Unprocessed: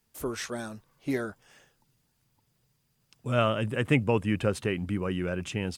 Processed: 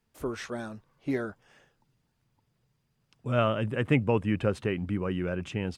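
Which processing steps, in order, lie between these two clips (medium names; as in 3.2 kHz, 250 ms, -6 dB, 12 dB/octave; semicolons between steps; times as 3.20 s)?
low-pass 2.6 kHz 6 dB/octave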